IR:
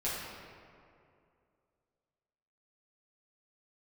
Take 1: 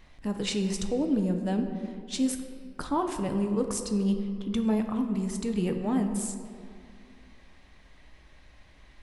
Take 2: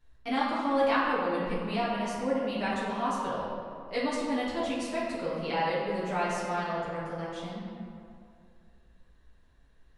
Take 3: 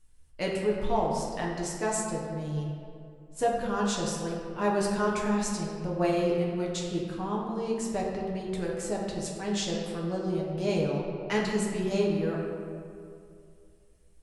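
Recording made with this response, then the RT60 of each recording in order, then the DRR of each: 2; 2.4, 2.4, 2.4 s; 4.5, -10.0, -3.5 dB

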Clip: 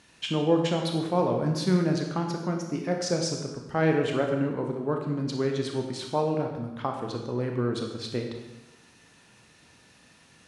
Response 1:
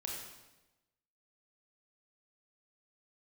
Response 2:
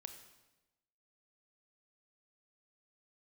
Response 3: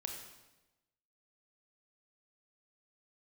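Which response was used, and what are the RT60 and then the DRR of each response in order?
3; 1.0, 1.0, 1.0 s; -2.0, 7.0, 2.0 dB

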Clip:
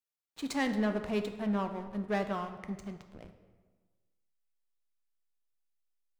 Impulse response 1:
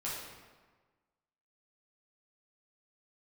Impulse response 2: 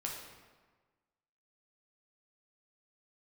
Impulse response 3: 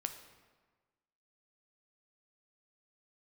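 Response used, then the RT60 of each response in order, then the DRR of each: 3; 1.4, 1.4, 1.4 s; -7.5, -2.0, 6.5 dB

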